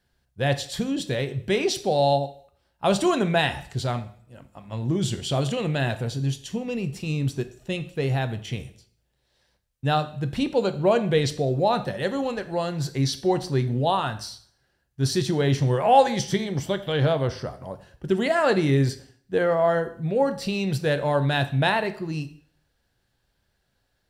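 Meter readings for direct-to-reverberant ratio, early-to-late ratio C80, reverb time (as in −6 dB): 9.0 dB, 17.5 dB, 0.55 s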